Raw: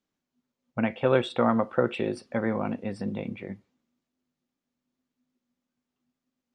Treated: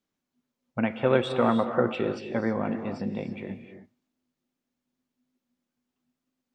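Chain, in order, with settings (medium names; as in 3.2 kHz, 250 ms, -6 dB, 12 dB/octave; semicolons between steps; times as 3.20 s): 1.84–3.32 s: Chebyshev low-pass 7.3 kHz, order 5; gated-style reverb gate 340 ms rising, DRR 8 dB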